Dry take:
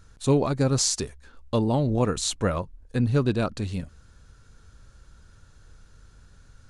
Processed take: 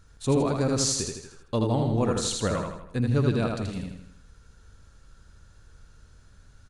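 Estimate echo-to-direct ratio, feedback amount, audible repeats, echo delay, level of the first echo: -2.5 dB, 49%, 6, 80 ms, -3.5 dB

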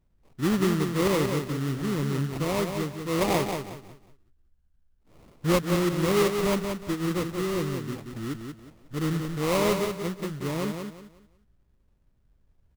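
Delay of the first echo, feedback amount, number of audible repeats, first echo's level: 0.182 s, 29%, 3, -6.0 dB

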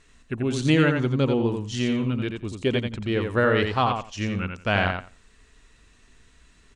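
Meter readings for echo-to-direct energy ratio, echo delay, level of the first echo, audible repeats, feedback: -5.5 dB, 87 ms, -5.5 dB, 2, 16%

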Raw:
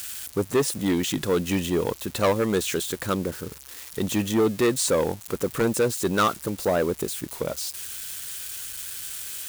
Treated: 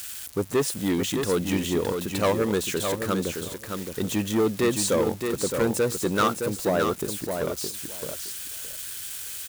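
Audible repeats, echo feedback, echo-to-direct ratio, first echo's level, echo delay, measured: 2, 16%, -6.0 dB, -6.0 dB, 0.616 s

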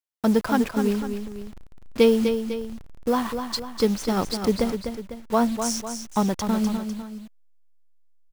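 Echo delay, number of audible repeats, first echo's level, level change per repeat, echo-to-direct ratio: 0.25 s, 2, -7.5 dB, -6.0 dB, -6.5 dB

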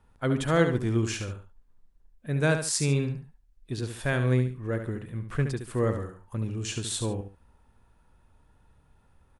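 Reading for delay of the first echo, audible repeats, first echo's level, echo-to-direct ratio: 71 ms, 2, -8.0 dB, -7.5 dB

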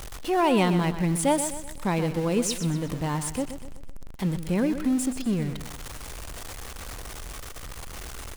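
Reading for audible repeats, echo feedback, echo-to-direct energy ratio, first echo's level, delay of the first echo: 4, 43%, -9.5 dB, -10.5 dB, 0.125 s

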